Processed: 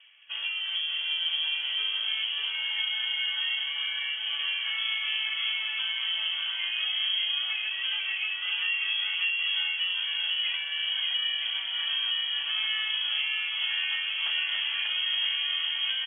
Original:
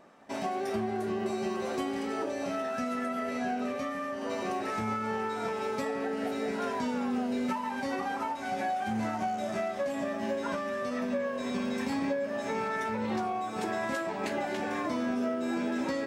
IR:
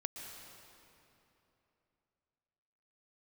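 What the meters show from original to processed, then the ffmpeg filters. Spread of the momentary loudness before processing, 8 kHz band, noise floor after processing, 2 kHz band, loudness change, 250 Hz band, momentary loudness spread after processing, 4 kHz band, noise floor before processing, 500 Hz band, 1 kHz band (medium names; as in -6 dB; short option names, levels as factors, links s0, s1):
2 LU, under -30 dB, -33 dBFS, +8.5 dB, +5.5 dB, under -40 dB, 3 LU, +23.5 dB, -36 dBFS, under -30 dB, -15.5 dB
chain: -filter_complex "[0:a]acrossover=split=350|820|2600[s0][s1][s2][s3];[s3]acrusher=samples=40:mix=1:aa=0.000001[s4];[s0][s1][s2][s4]amix=inputs=4:normalize=0,aecho=1:1:590|973.5|1223|1385|1490:0.631|0.398|0.251|0.158|0.1,lowpass=f=3000:t=q:w=0.5098,lowpass=f=3000:t=q:w=0.6013,lowpass=f=3000:t=q:w=0.9,lowpass=f=3000:t=q:w=2.563,afreqshift=-3500,volume=1.12" -ar 16000 -c:a libmp3lame -b:a 32k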